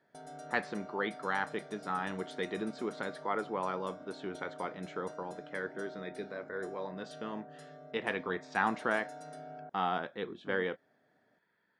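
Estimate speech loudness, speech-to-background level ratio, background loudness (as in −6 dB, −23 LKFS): −37.0 LKFS, 12.5 dB, −49.5 LKFS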